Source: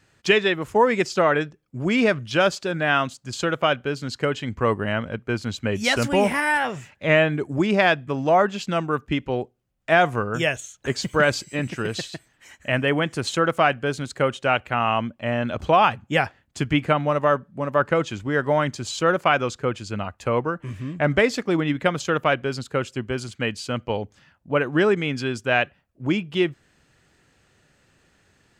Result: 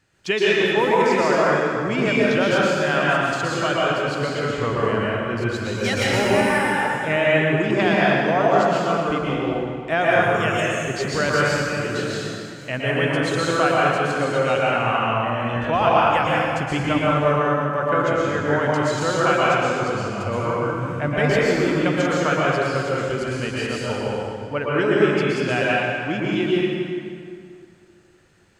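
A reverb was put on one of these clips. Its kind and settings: plate-style reverb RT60 2.4 s, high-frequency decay 0.7×, pre-delay 105 ms, DRR -6.5 dB; trim -5 dB

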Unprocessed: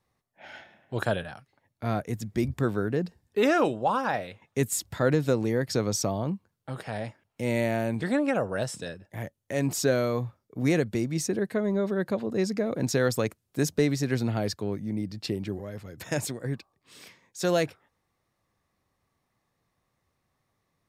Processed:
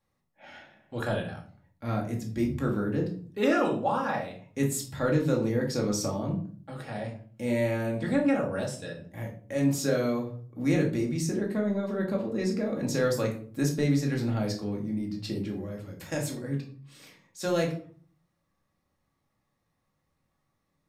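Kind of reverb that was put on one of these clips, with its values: simulated room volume 400 m³, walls furnished, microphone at 2.3 m; trim -6 dB

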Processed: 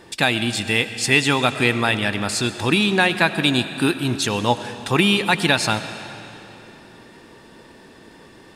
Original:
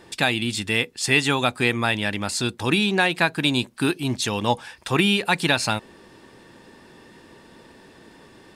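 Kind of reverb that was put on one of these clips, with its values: algorithmic reverb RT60 3.2 s, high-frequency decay 0.9×, pre-delay 55 ms, DRR 11 dB; trim +2.5 dB

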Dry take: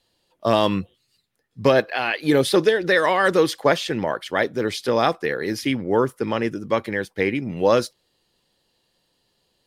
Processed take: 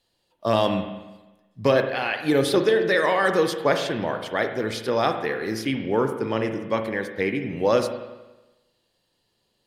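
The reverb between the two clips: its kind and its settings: spring tank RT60 1.1 s, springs 36/45 ms, chirp 70 ms, DRR 6 dB; trim -3.5 dB

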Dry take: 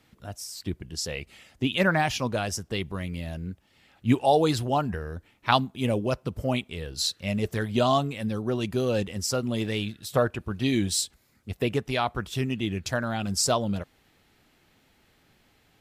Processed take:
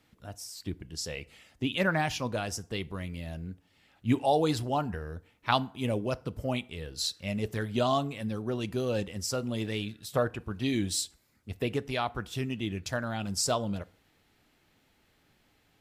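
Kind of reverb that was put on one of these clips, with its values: FDN reverb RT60 0.55 s, low-frequency decay 0.85×, high-frequency decay 0.65×, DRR 17 dB; trim -4.5 dB

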